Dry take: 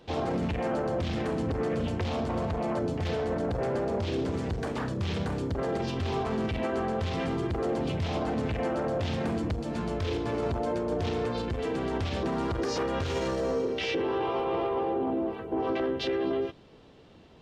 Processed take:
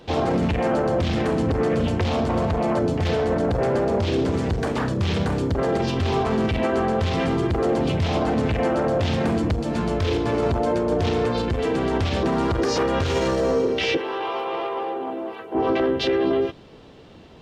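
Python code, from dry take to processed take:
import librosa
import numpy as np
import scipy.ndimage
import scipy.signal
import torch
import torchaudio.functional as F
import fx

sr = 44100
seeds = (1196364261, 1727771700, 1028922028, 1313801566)

y = fx.highpass(x, sr, hz=1000.0, slope=6, at=(13.97, 15.55))
y = F.gain(torch.from_numpy(y), 8.0).numpy()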